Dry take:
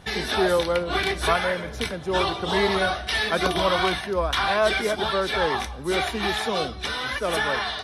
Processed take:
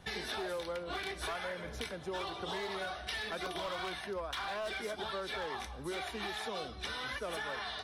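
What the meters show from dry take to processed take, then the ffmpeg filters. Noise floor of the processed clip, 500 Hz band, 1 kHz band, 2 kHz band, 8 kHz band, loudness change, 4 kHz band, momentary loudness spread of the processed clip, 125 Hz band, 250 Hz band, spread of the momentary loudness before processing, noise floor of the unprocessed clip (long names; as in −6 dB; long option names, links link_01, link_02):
−46 dBFS, −15.5 dB, −15.0 dB, −14.5 dB, −13.0 dB, −15.0 dB, −14.0 dB, 2 LU, −16.5 dB, −16.0 dB, 6 LU, −35 dBFS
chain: -filter_complex "[0:a]acrossover=split=310|1600[link_01][link_02][link_03];[link_01]alimiter=level_in=6dB:limit=-24dB:level=0:latency=1:release=498,volume=-6dB[link_04];[link_04][link_02][link_03]amix=inputs=3:normalize=0,asoftclip=type=hard:threshold=-17.5dB,acompressor=threshold=-28dB:ratio=6,volume=-8dB"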